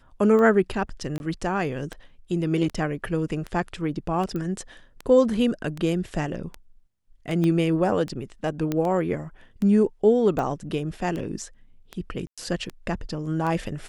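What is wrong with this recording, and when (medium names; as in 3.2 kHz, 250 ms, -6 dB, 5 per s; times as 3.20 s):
tick 78 rpm -19 dBFS
1.18–1.20 s: dropout 21 ms
4.36 s: pop -20 dBFS
7.44 s: pop -15 dBFS
8.72 s: pop -13 dBFS
12.27–12.38 s: dropout 106 ms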